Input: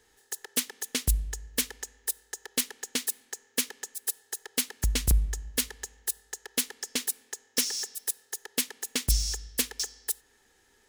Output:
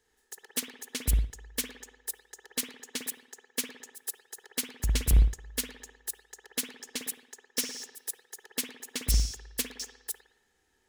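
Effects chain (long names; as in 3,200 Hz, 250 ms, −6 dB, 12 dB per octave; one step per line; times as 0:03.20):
convolution reverb, pre-delay 55 ms, DRR 1 dB
expander for the loud parts 1.5 to 1, over −35 dBFS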